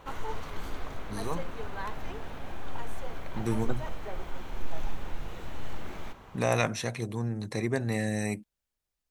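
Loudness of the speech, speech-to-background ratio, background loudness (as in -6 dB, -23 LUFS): -32.0 LUFS, 9.5 dB, -41.5 LUFS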